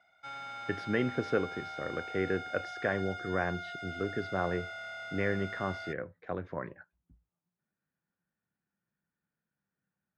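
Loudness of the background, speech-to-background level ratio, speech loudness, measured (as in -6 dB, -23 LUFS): -41.5 LUFS, 6.0 dB, -35.5 LUFS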